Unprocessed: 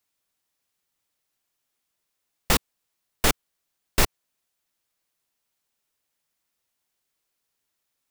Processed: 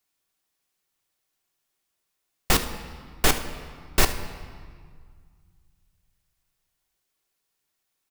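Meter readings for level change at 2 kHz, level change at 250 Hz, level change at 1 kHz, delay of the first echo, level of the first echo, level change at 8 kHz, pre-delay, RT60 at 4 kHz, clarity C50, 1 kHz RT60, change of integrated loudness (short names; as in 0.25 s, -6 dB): +1.0 dB, +0.5 dB, +1.0 dB, 75 ms, -16.5 dB, +0.5 dB, 3 ms, 1.4 s, 9.5 dB, 1.9 s, 0.0 dB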